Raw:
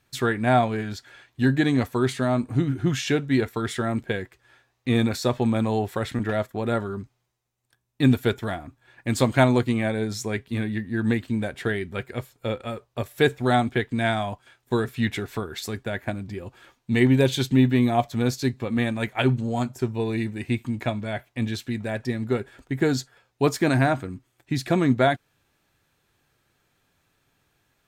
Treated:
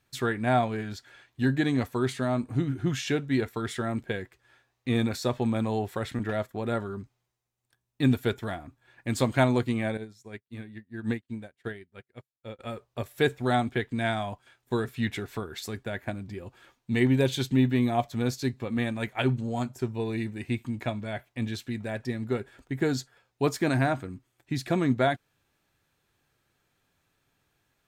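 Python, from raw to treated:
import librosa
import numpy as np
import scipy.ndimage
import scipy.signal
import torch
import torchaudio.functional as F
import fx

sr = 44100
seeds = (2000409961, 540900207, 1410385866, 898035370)

y = fx.upward_expand(x, sr, threshold_db=-45.0, expansion=2.5, at=(9.97, 12.59))
y = F.gain(torch.from_numpy(y), -4.5).numpy()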